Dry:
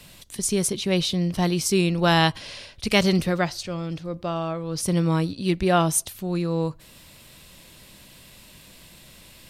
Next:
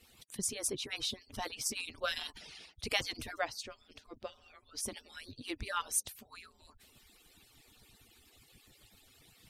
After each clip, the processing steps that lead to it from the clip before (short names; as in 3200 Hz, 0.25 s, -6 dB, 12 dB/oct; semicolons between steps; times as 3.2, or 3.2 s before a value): median-filter separation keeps percussive; gain -9 dB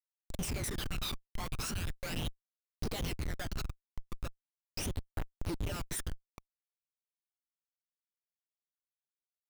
Schmitt trigger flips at -39 dBFS; phaser 0.38 Hz, delay 1 ms, feedback 57%; gain +3 dB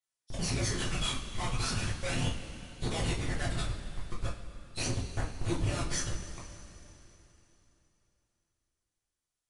nonlinear frequency compression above 2600 Hz 1.5:1; two-slope reverb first 0.28 s, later 3.4 s, from -18 dB, DRR -5 dB